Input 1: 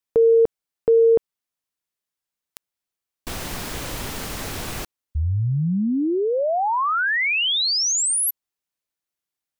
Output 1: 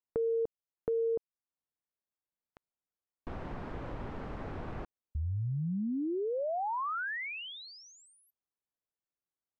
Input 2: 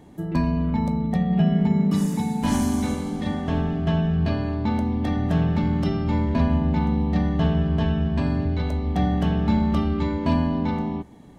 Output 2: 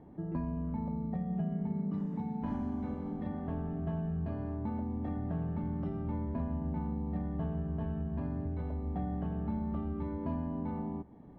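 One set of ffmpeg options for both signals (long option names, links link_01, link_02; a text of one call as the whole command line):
ffmpeg -i in.wav -af "lowpass=1200,acompressor=threshold=-29dB:ratio=2.5:attack=9.8:release=386:knee=6,volume=-5.5dB" out.wav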